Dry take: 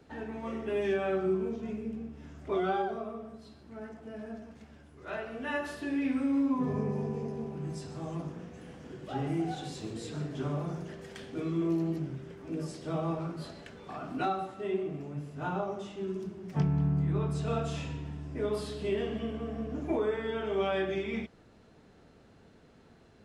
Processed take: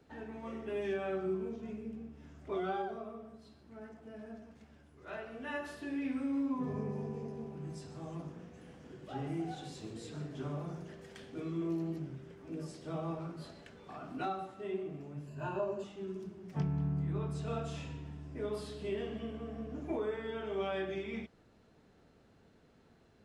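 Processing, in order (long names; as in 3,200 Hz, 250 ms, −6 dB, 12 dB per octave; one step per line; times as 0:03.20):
0:15.27–0:15.84: EQ curve with evenly spaced ripples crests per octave 1.4, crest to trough 15 dB
level −6 dB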